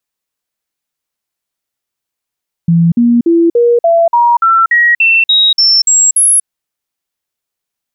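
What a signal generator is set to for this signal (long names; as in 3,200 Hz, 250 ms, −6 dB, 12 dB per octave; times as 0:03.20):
stepped sweep 168 Hz up, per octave 2, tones 13, 0.24 s, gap 0.05 s −5 dBFS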